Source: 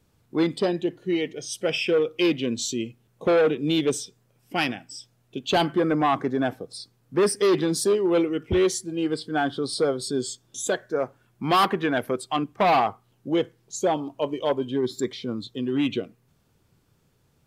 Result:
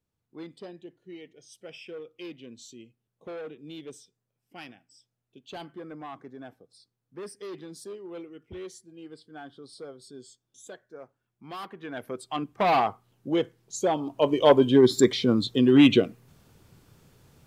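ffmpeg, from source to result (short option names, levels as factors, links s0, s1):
-af "volume=2.51,afade=t=in:st=11.75:d=0.34:silence=0.334965,afade=t=in:st=12.09:d=0.71:silence=0.421697,afade=t=in:st=13.97:d=0.61:silence=0.316228"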